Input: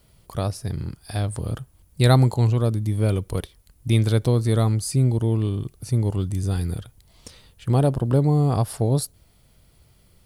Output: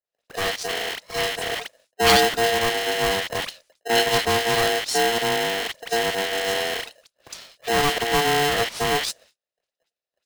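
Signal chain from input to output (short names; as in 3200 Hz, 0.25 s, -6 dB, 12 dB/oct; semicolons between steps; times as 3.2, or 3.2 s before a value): rattling part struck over -29 dBFS, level -23 dBFS; Chebyshev low-pass 9700 Hz, order 6; gate -51 dBFS, range -38 dB; band shelf 2900 Hz +11.5 dB 2.7 oct; dispersion highs, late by 68 ms, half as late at 2100 Hz; polarity switched at an audio rate 580 Hz; gain -2 dB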